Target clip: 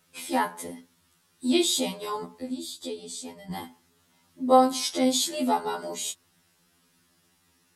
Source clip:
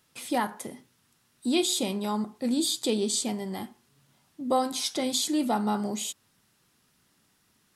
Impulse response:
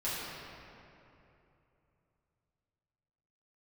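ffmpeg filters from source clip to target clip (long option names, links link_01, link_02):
-filter_complex "[0:a]asettb=1/sr,asplit=3[link_01][link_02][link_03];[link_01]atrim=end=2.424[link_04];[link_02]atrim=start=2.42:end=3.51,asetpts=PTS-STARTPTS,afade=type=in:duration=0.004:curve=qsin,afade=type=out:start_time=1.086:duration=0.004:curve=qsin,acrossover=split=160[link_05][link_06];[link_06]acompressor=threshold=-57dB:ratio=1.5[link_07];[link_05][link_07]amix=inputs=2:normalize=0[link_08];[link_03]atrim=start=3.506[link_09];[link_04][link_08]acrossfade=duration=0.004:curve1=hsin:curve2=qsin[link_10];[link_10][link_09]acrossfade=duration=0.004:curve1=qsin:curve2=hsin,afftfilt=real='re*2*eq(mod(b,4),0)':imag='im*2*eq(mod(b,4),0)':win_size=2048:overlap=0.75,volume=4dB"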